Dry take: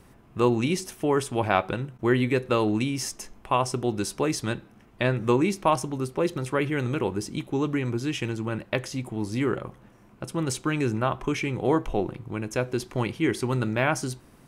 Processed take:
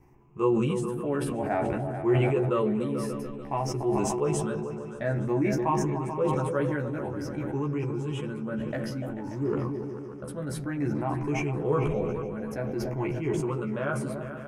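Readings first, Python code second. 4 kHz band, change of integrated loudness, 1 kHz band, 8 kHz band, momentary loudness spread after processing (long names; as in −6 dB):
−10.5 dB, −2.5 dB, −4.0 dB, −6.5 dB, 8 LU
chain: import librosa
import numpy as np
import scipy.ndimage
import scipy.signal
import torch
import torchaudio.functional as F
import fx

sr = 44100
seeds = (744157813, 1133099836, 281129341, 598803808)

p1 = fx.spec_ripple(x, sr, per_octave=0.73, drift_hz=0.54, depth_db=12)
p2 = fx.high_shelf(p1, sr, hz=2200.0, db=-10.0)
p3 = fx.doubler(p2, sr, ms=14.0, db=-2.5)
p4 = fx.spec_repair(p3, sr, seeds[0], start_s=9.27, length_s=0.23, low_hz=820.0, high_hz=3400.0, source='both')
p5 = fx.peak_eq(p4, sr, hz=3800.0, db=-8.0, octaves=0.79)
p6 = p5 + fx.echo_opening(p5, sr, ms=146, hz=200, octaves=2, feedback_pct=70, wet_db=-6, dry=0)
p7 = fx.sustainer(p6, sr, db_per_s=22.0)
y = F.gain(torch.from_numpy(p7), -9.0).numpy()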